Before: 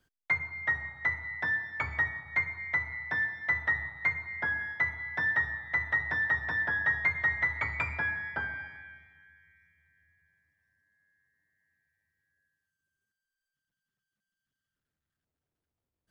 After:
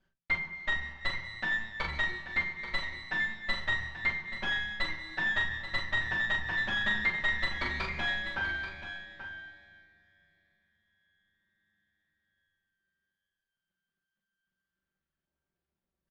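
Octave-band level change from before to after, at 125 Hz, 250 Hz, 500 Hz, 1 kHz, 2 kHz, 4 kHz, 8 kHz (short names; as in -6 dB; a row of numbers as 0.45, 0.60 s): -1.5 dB, +4.5 dB, +2.0 dB, -0.5 dB, -2.0 dB, +16.0 dB, n/a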